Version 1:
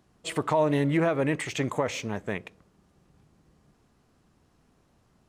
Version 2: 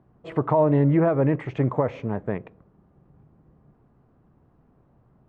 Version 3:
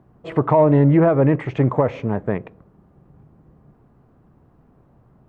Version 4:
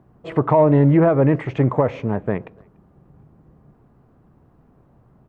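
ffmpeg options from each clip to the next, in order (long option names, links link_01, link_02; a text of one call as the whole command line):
ffmpeg -i in.wav -af "lowpass=1100,equalizer=frequency=130:width=4.2:gain=6,volume=4.5dB" out.wav
ffmpeg -i in.wav -af "acontrast=39" out.wav
ffmpeg -i in.wav -filter_complex "[0:a]asplit=2[link_01][link_02];[link_02]adelay=290,highpass=300,lowpass=3400,asoftclip=type=hard:threshold=-14.5dB,volume=-29dB[link_03];[link_01][link_03]amix=inputs=2:normalize=0" out.wav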